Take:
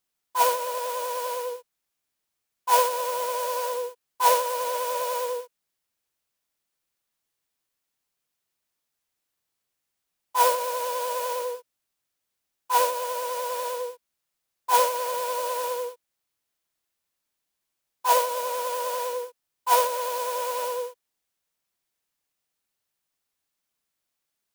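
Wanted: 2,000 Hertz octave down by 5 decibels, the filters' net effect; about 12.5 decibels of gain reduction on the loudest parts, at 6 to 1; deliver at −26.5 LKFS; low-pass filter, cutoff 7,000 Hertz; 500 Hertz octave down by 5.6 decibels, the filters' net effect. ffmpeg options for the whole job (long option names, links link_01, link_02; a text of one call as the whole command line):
ffmpeg -i in.wav -af "lowpass=7000,equalizer=frequency=500:width_type=o:gain=-5.5,equalizer=frequency=2000:width_type=o:gain=-7,acompressor=threshold=-32dB:ratio=6,volume=10dB" out.wav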